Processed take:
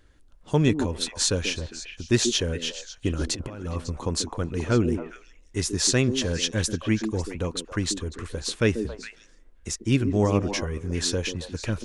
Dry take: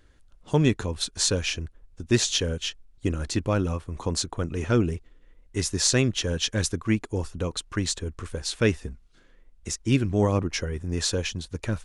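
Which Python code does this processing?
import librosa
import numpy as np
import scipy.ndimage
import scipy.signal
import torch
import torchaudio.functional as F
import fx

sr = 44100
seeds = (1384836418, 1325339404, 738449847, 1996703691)

p1 = fx.over_compress(x, sr, threshold_db=-29.0, ratio=-0.5, at=(3.21, 3.92))
y = p1 + fx.echo_stepped(p1, sr, ms=137, hz=300.0, octaves=1.4, feedback_pct=70, wet_db=-4, dry=0)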